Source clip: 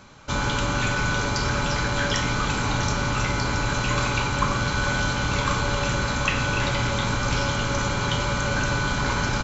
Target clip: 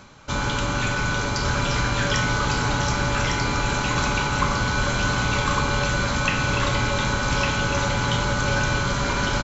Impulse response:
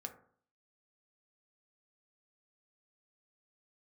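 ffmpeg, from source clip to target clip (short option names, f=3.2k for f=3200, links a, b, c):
-af "areverse,acompressor=mode=upward:threshold=-35dB:ratio=2.5,areverse,aecho=1:1:1155:0.631"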